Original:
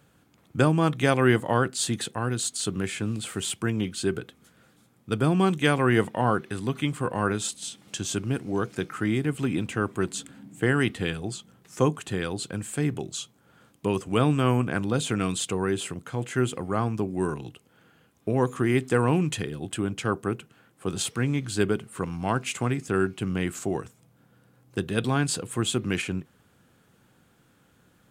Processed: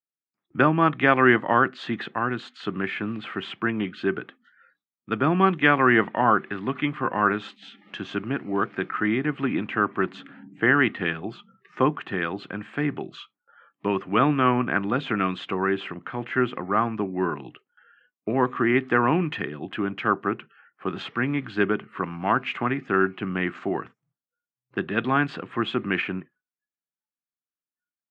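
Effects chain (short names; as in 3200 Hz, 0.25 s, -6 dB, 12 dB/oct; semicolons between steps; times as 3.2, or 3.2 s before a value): spectral noise reduction 27 dB; gate with hold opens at -57 dBFS; speaker cabinet 220–2800 Hz, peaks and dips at 480 Hz -7 dB, 1200 Hz +5 dB, 1800 Hz +5 dB; gain +4 dB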